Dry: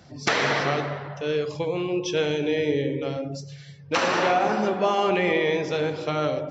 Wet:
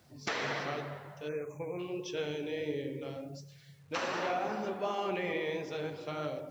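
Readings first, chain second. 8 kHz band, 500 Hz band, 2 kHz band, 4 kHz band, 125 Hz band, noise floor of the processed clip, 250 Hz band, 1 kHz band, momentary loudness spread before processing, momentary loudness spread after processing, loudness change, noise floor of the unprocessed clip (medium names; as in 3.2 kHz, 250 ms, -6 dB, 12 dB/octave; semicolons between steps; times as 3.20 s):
no reading, -12.0 dB, -12.0 dB, -12.5 dB, -12.5 dB, -57 dBFS, -12.0 dB, -12.0 dB, 9 LU, 9 LU, -12.0 dB, -44 dBFS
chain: flange 1.4 Hz, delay 2.5 ms, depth 9.6 ms, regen -57%; word length cut 10-bit, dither none; spectral selection erased 1.28–1.79 s, 2.6–5.8 kHz; trim -8 dB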